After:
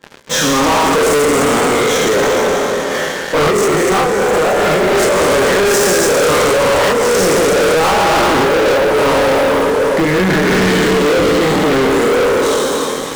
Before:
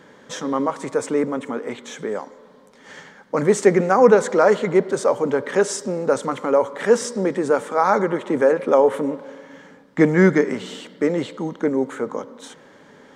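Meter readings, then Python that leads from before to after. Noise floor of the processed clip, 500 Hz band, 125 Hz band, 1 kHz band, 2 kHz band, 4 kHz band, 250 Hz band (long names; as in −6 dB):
−20 dBFS, +7.5 dB, +7.5 dB, +10.0 dB, +13.0 dB, +20.0 dB, +6.0 dB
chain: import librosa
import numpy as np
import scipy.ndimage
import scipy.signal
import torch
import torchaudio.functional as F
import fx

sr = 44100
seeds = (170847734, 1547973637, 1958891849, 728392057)

p1 = fx.spec_trails(x, sr, decay_s=2.87)
p2 = fx.over_compress(p1, sr, threshold_db=-14.0, ratio=-0.5)
p3 = p2 + fx.echo_feedback(p2, sr, ms=291, feedback_pct=47, wet_db=-10.5, dry=0)
p4 = fx.chorus_voices(p3, sr, voices=6, hz=0.21, base_ms=26, depth_ms=1.4, mix_pct=45)
p5 = fx.low_shelf(p4, sr, hz=120.0, db=-7.5)
p6 = fx.leveller(p5, sr, passes=5)
p7 = 10.0 ** (-12.0 / 20.0) * np.tanh(p6 / 10.0 ** (-12.0 / 20.0))
y = F.gain(torch.from_numpy(p7), 1.5).numpy()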